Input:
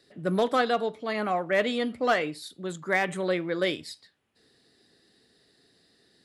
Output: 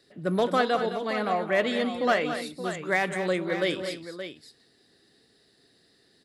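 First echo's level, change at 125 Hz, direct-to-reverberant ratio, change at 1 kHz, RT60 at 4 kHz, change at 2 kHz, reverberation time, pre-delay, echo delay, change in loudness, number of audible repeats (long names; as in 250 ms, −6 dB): −18.0 dB, +1.0 dB, no reverb audible, +1.0 dB, no reverb audible, +0.5 dB, no reverb audible, no reverb audible, 178 ms, +0.5 dB, 3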